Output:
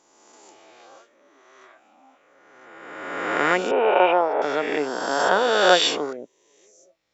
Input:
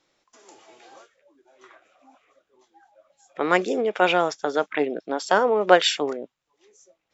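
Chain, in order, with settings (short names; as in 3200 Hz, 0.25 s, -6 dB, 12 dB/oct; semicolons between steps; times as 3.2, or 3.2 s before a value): spectral swells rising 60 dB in 1.71 s; 3.71–4.42 speaker cabinet 290–2500 Hz, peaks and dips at 400 Hz +7 dB, 580 Hz +6 dB, 910 Hz +8 dB, 1400 Hz -5 dB; gain -3.5 dB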